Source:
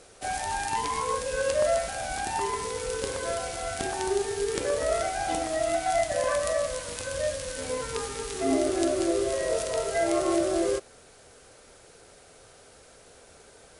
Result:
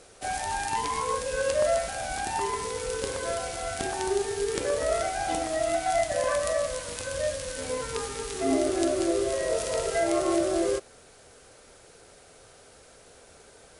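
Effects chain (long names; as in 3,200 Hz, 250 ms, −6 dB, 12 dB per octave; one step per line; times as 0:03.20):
0:09.57–0:10.00: flutter between parallel walls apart 10.1 metres, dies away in 0.68 s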